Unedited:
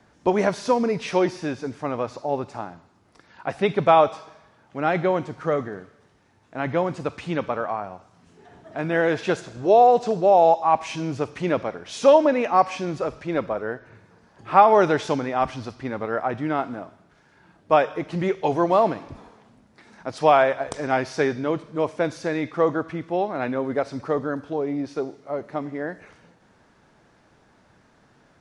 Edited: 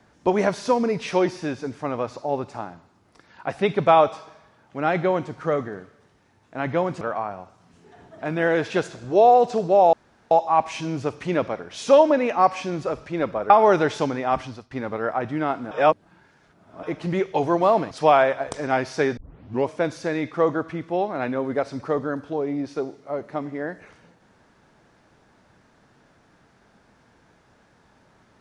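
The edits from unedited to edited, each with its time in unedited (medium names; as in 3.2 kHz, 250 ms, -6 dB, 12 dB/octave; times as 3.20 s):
7.01–7.54 s: delete
10.46 s: insert room tone 0.38 s
13.65–14.59 s: delete
15.51–15.80 s: fade out, to -20 dB
16.80–17.92 s: reverse
19.00–20.11 s: delete
21.37 s: tape start 0.51 s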